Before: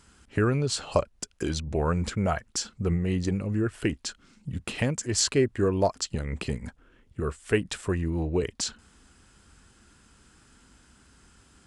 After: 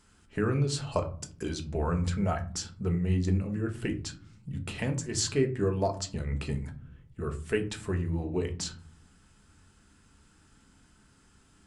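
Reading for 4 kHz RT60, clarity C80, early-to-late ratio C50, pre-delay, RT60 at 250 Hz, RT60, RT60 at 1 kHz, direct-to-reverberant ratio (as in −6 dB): 0.25 s, 18.5 dB, 13.5 dB, 5 ms, 0.85 s, 0.45 s, 0.40 s, 4.0 dB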